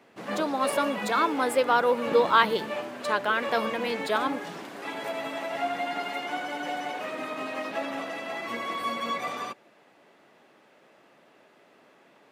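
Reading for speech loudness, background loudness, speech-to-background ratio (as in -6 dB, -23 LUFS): -26.0 LUFS, -33.0 LUFS, 7.0 dB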